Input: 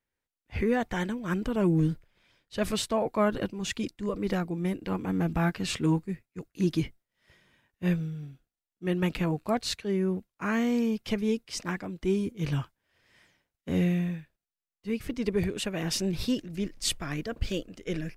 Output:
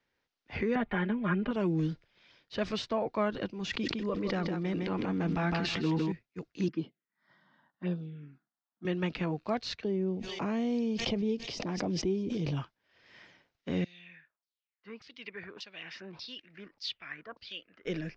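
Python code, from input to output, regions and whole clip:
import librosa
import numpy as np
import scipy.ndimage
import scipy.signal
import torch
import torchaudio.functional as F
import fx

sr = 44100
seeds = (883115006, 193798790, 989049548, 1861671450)

y = fx.chain(x, sr, fx.lowpass(hz=2800.0, slope=24),
    fx.comb(ms=4.9, depth=0.87),
    fx.band_squash(depth_pct=100), at=(0.75, 1.51))
y = fx.chain(y, sr, fx.echo_feedback(ms=159, feedback_pct=25, wet_db=-9.0),
    fx.sustainer(db_per_s=21.0), at=(3.69, 6.12))
y = fx.chain(y, sr, fx.highpass(hz=170.0, slope=24),
    fx.env_phaser(low_hz=410.0, high_hz=2100.0, full_db=-26.0),
    fx.air_absorb(metres=300.0), at=(6.68, 8.85))
y = fx.chain(y, sr, fx.curve_eq(hz=(750.0, 1500.0, 3100.0), db=(0, -14, -5)),
    fx.echo_wet_highpass(ms=214, feedback_pct=67, hz=3700.0, wet_db=-13),
    fx.pre_swell(db_per_s=20.0), at=(9.83, 12.57))
y = fx.chain(y, sr, fx.low_shelf(hz=240.0, db=10.0),
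    fx.filter_lfo_bandpass(shape='saw_down', hz=1.7, low_hz=890.0, high_hz=5300.0, q=3.7), at=(13.84, 17.85))
y = scipy.signal.sosfilt(scipy.signal.butter(6, 5700.0, 'lowpass', fs=sr, output='sos'), y)
y = fx.low_shelf(y, sr, hz=86.0, db=-11.5)
y = fx.band_squash(y, sr, depth_pct=40)
y = F.gain(torch.from_numpy(y), -3.0).numpy()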